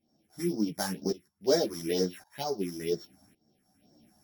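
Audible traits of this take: a buzz of ramps at a fixed pitch in blocks of 8 samples; phasing stages 4, 2.1 Hz, lowest notch 410–2700 Hz; tremolo saw up 0.9 Hz, depth 90%; a shimmering, thickened sound

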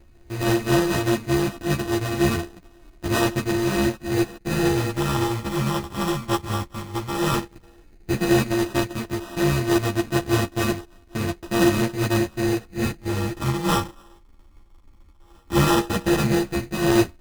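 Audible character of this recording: a buzz of ramps at a fixed pitch in blocks of 128 samples; phasing stages 8, 0.12 Hz, lowest notch 580–2300 Hz; aliases and images of a low sample rate 2200 Hz, jitter 0%; a shimmering, thickened sound

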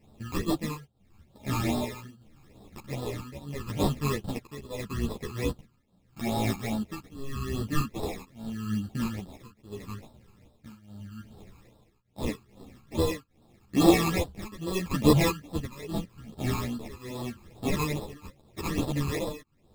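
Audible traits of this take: aliases and images of a low sample rate 1500 Hz, jitter 0%; phasing stages 12, 2.4 Hz, lowest notch 590–2200 Hz; tremolo triangle 0.81 Hz, depth 95%; a shimmering, thickened sound

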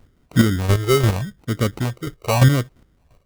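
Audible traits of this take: chopped level 2.9 Hz, depth 60%, duty 20%; phasing stages 6, 0.83 Hz, lowest notch 210–1100 Hz; aliases and images of a low sample rate 1700 Hz, jitter 0%

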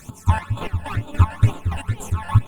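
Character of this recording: a quantiser's noise floor 8-bit, dither none; chopped level 3.5 Hz, depth 65%, duty 35%; phasing stages 12, 2.1 Hz, lowest notch 370–1900 Hz; Opus

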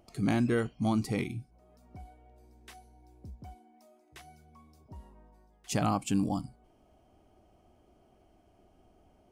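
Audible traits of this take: noise floor -65 dBFS; spectral tilt -6.5 dB/oct

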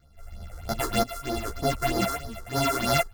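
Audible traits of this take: a buzz of ramps at a fixed pitch in blocks of 64 samples; phasing stages 6, 3.2 Hz, lowest notch 170–2700 Hz; tremolo saw up 0.98 Hz, depth 65%; a shimmering, thickened sound

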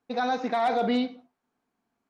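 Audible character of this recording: noise floor -82 dBFS; spectral tilt -2.5 dB/oct

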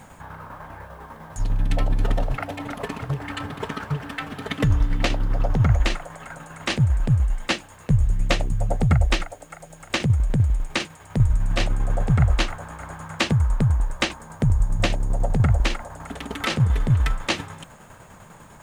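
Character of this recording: a quantiser's noise floor 10-bit, dither none; tremolo saw down 10 Hz, depth 50%

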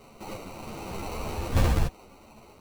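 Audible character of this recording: aliases and images of a low sample rate 1700 Hz, jitter 0%; a shimmering, thickened sound

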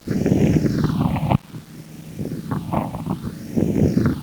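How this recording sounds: phasing stages 6, 0.61 Hz, lowest notch 400–1200 Hz; a quantiser's noise floor 8-bit, dither none; Opus

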